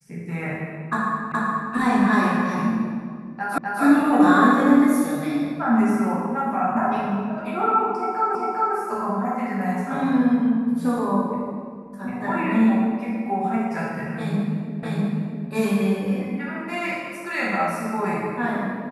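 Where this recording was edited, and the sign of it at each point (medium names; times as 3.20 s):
1.32 s: repeat of the last 0.42 s
3.58 s: repeat of the last 0.25 s
8.35 s: repeat of the last 0.4 s
14.83 s: repeat of the last 0.65 s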